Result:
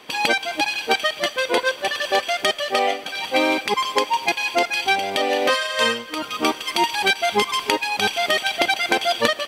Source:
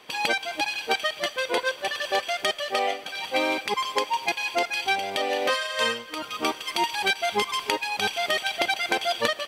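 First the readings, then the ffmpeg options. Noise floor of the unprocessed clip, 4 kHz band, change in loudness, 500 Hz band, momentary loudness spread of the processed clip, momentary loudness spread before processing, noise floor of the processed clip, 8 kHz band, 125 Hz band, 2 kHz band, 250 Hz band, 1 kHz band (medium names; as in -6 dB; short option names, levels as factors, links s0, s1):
-42 dBFS, +5.0 dB, +5.0 dB, +5.5 dB, 4 LU, 4 LU, -37 dBFS, +5.0 dB, +6.0 dB, +5.0 dB, +7.5 dB, +5.0 dB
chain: -af "equalizer=f=260:t=o:w=0.77:g=4,volume=1.78"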